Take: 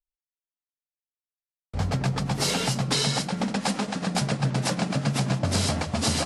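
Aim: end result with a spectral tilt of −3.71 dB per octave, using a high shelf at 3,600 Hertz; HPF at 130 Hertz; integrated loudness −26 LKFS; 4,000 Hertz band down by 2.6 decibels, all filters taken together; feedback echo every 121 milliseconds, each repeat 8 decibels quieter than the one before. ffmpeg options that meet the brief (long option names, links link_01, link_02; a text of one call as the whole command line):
ffmpeg -i in.wav -af "highpass=130,highshelf=frequency=3600:gain=7.5,equalizer=frequency=4000:width_type=o:gain=-9,aecho=1:1:121|242|363|484|605:0.398|0.159|0.0637|0.0255|0.0102,volume=-0.5dB" out.wav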